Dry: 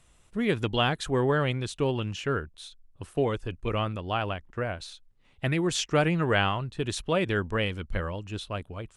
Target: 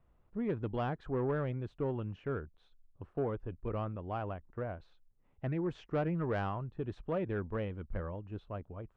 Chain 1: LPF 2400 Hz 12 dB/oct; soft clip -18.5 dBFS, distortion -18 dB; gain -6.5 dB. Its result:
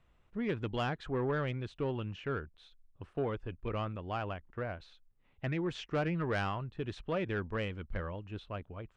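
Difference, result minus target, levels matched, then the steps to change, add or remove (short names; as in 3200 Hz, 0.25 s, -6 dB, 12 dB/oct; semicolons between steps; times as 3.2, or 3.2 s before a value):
2000 Hz band +6.0 dB
change: LPF 1100 Hz 12 dB/oct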